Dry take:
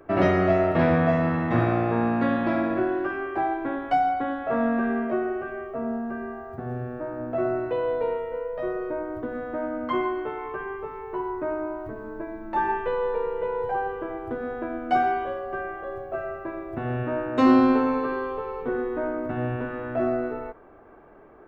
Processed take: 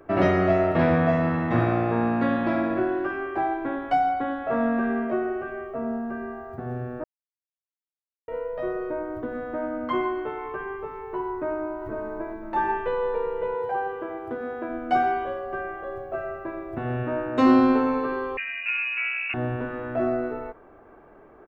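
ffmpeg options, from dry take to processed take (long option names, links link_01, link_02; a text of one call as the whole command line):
ffmpeg -i in.wav -filter_complex "[0:a]asplit=2[link_01][link_02];[link_02]afade=type=in:start_time=11.31:duration=0.01,afade=type=out:start_time=11.83:duration=0.01,aecho=0:1:500|1000|1500:0.501187|0.125297|0.0313242[link_03];[link_01][link_03]amix=inputs=2:normalize=0,asettb=1/sr,asplit=3[link_04][link_05][link_06];[link_04]atrim=end=13.554[link_07];[link_05]atrim=start=13.55:end=14.69,asetpts=PTS-STARTPTS,afade=type=in:duration=0.004:curve=qsin,afade=type=out:start_time=1.136:duration=0.004:curve=qsin,highpass=frequency=180:poles=1[link_08];[link_06]atrim=start=14.686[link_09];[link_07][link_08]acrossfade=duration=0.004:curve1=hsin:curve2=qsin[link_10];[link_10][link_09]acrossfade=duration=0.004:curve1=qsin:curve2=hsin,asettb=1/sr,asplit=3[link_11][link_12][link_13];[link_11]atrim=end=18.374[link_14];[link_12]atrim=start=18.37:end=19.34,asetpts=PTS-STARTPTS,afade=type=in:duration=0.004:curve=qsin,afade=type=out:start_time=0.966:duration=0.004:curve=qsin,lowpass=frequency=2500:width_type=q:width=0.5098,lowpass=frequency=2500:width_type=q:width=0.6013,lowpass=frequency=2500:width_type=q:width=0.9,lowpass=frequency=2500:width_type=q:width=2.563,afreqshift=-2900[link_15];[link_13]atrim=start=19.336[link_16];[link_14][link_15]acrossfade=duration=0.004:curve1=hsin:curve2=qsin[link_17];[link_17][link_16]acrossfade=duration=0.004:curve1=qsin:curve2=hsin,asplit=3[link_18][link_19][link_20];[link_18]atrim=end=7.04,asetpts=PTS-STARTPTS,afade=type=out:start_time=7.036:duration=0.004:curve=hsin[link_21];[link_19]atrim=start=7.04:end=8.28,asetpts=PTS-STARTPTS,volume=0[link_22];[link_20]atrim=start=8.28,asetpts=PTS-STARTPTS,afade=type=in:duration=0.004:curve=hsin[link_23];[link_21][link_22][link_23]concat=n=3:v=0:a=1" out.wav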